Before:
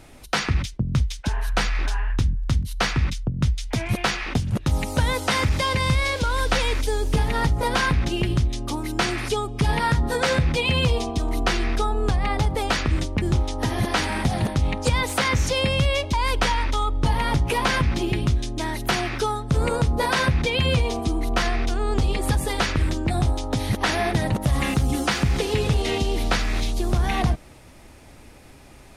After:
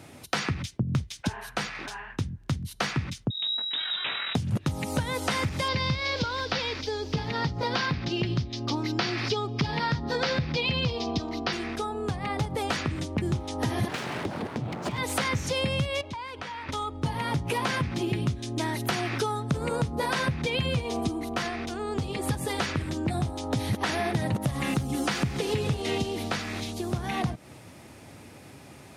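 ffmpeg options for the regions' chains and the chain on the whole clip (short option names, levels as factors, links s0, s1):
-filter_complex "[0:a]asettb=1/sr,asplit=3[s0][s1][s2];[s0]atrim=end=3.304[s3];[s1]atrim=start=3.3:end=4.35,asetpts=PTS-STARTPTS,afade=t=in:d=0.004:c=qsin,afade=t=out:st=1.046:d=0.004:c=qsin,asplit=2[s4][s5];[s5]adelay=20,volume=0.237[s6];[s4][s6]amix=inputs=2:normalize=0,atrim=end_sample=46305,aeval=exprs='(tanh(20*val(0)+0.45)-tanh(0.45))/20':c=same,lowpass=f=3300:t=q:w=0.5098,lowpass=f=3300:t=q:w=0.6013,lowpass=f=3300:t=q:w=0.9,lowpass=f=3300:t=q:w=2.563,afreqshift=-3900[s7];[s2]atrim=start=4.346[s8];[s3][s7]acrossfade=d=0.004:c1=hsin:c2=qsin[s9];[s9][s8]acrossfade=d=0.004:c1=qsin:c2=hsin,asettb=1/sr,asplit=3[s10][s11][s12];[s10]atrim=end=5.684[s13];[s11]atrim=start=5.68:end=11.53,asetpts=PTS-STARTPTS,afade=t=in:d=0.004:c=qsin,afade=t=out:st=5.846:d=0.004:c=qsin,highshelf=f=6900:t=q:w=3:g=-12.5,acrossover=split=5900[s14][s15];[s15]acompressor=threshold=0.00891:ratio=4:attack=1:release=60[s16];[s14][s16]amix=inputs=2:normalize=0[s17];[s12]atrim=start=11.526[s18];[s13][s17]acrossfade=d=0.004:c1=hsin:c2=qsin[s19];[s19][s18]acrossfade=d=0.004:c1=qsin:c2=hsin,asettb=1/sr,asplit=3[s20][s21][s22];[s20]atrim=end=13.884[s23];[s21]atrim=start=13.88:end=14.98,asetpts=PTS-STARTPTS,afade=t=in:d=0.004:c=qsin,afade=t=out:st=1.096:d=0.004:c=qsin,aemphasis=mode=reproduction:type=75kf,aeval=exprs='abs(val(0))':c=same[s24];[s22]atrim=start=14.976[s25];[s23][s24]acrossfade=d=0.004:c1=hsin:c2=qsin[s26];[s26][s25]acrossfade=d=0.004:c1=qsin:c2=hsin,asettb=1/sr,asplit=3[s27][s28][s29];[s27]atrim=end=16.014[s30];[s28]atrim=start=16.01:end=16.69,asetpts=PTS-STARTPTS,afade=t=in:d=0.004:c=qsin,afade=t=out:st=0.676:d=0.004:c=qsin,highpass=f=1300:p=1,acompressor=threshold=0.02:ratio=4:attack=3.2:release=140:knee=1:detection=peak,aemphasis=mode=reproduction:type=riaa[s31];[s29]atrim=start=16.686[s32];[s30][s31]acrossfade=d=0.004:c1=hsin:c2=qsin[s33];[s33][s32]acrossfade=d=0.004:c1=qsin:c2=hsin,acompressor=threshold=0.0562:ratio=5,highpass=f=97:w=0.5412,highpass=f=97:w=1.3066,lowshelf=f=220:g=4.5"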